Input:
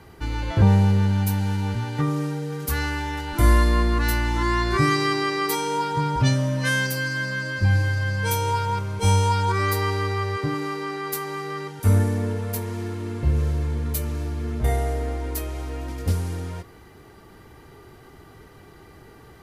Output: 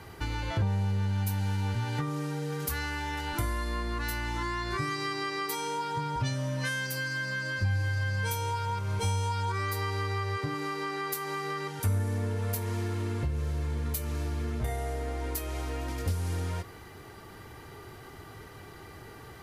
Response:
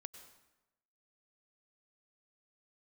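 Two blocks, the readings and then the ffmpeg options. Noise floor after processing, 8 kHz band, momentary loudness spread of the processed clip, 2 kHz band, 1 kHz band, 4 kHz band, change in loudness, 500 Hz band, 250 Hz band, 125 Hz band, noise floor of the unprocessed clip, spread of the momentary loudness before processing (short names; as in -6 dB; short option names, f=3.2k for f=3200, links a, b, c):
-48 dBFS, -6.5 dB, 17 LU, -6.5 dB, -7.5 dB, -6.5 dB, -8.5 dB, -8.5 dB, -10.5 dB, -8.5 dB, -48 dBFS, 10 LU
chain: -af "lowshelf=f=440:g=-7,acompressor=threshold=-34dB:ratio=5,equalizer=f=100:w=1.6:g=6,volume=3dB"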